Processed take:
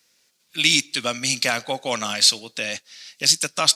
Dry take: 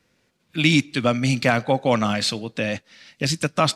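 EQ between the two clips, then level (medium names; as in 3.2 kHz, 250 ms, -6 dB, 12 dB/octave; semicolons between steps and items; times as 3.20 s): RIAA curve recording; bass shelf 63 Hz +6.5 dB; peaking EQ 5.2 kHz +6.5 dB 1.5 oct; -4.5 dB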